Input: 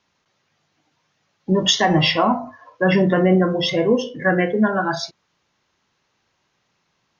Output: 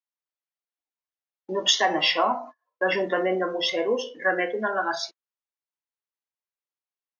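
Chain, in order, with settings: gate -33 dBFS, range -30 dB; Bessel high-pass 460 Hz, order 4; gain -3 dB

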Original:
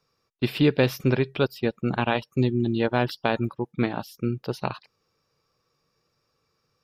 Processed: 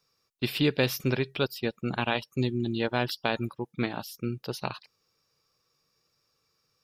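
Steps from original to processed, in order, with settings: high shelf 2700 Hz +10.5 dB; gain -5.5 dB

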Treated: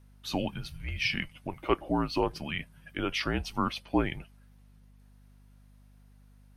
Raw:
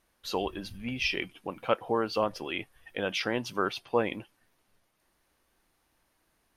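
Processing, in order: frequency shift -170 Hz; hum 50 Hz, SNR 23 dB

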